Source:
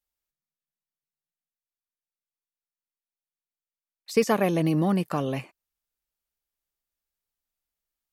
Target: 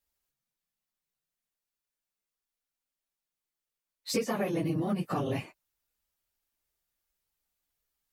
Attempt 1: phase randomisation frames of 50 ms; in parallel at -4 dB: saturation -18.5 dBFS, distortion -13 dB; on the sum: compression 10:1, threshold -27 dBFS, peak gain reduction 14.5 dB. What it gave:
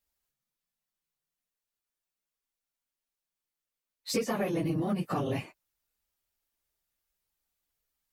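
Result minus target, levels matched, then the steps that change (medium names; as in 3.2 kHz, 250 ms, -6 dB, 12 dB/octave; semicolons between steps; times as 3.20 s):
saturation: distortion +10 dB
change: saturation -11 dBFS, distortion -23 dB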